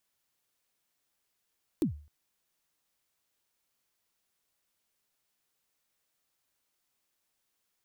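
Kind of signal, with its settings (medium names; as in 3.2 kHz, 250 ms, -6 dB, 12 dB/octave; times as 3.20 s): kick drum length 0.26 s, from 360 Hz, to 74 Hz, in 109 ms, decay 0.41 s, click on, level -21 dB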